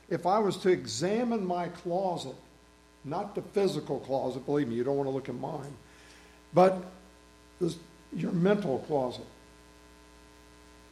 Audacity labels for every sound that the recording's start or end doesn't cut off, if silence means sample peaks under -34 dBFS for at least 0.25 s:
3.070000	5.670000	sound
6.550000	6.830000	sound
7.610000	7.740000	sound
8.130000	9.210000	sound